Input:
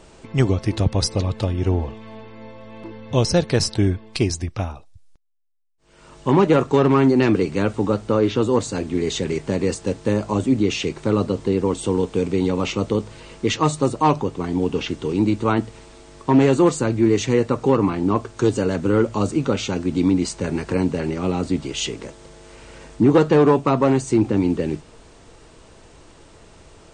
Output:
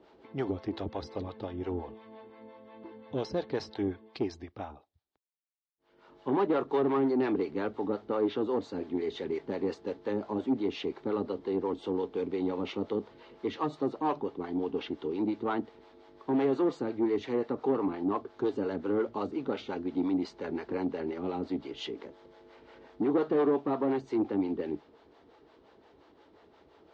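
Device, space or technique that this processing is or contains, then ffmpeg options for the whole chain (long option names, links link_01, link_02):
guitar amplifier with harmonic tremolo: -filter_complex "[0:a]acrossover=split=480[link_01][link_02];[link_01]aeval=exprs='val(0)*(1-0.7/2+0.7/2*cos(2*PI*5.7*n/s))':channel_layout=same[link_03];[link_02]aeval=exprs='val(0)*(1-0.7/2-0.7/2*cos(2*PI*5.7*n/s))':channel_layout=same[link_04];[link_03][link_04]amix=inputs=2:normalize=0,asoftclip=type=tanh:threshold=-14dB,highpass=110,equalizer=frequency=110:width_type=q:width=4:gain=-10,equalizer=frequency=160:width_type=q:width=4:gain=-9,equalizer=frequency=290:width_type=q:width=4:gain=4,equalizer=frequency=410:width_type=q:width=4:gain=5,equalizer=frequency=810:width_type=q:width=4:gain=5,equalizer=frequency=2600:width_type=q:width=4:gain=-6,lowpass=frequency=4000:width=0.5412,lowpass=frequency=4000:width=1.3066,volume=-8.5dB"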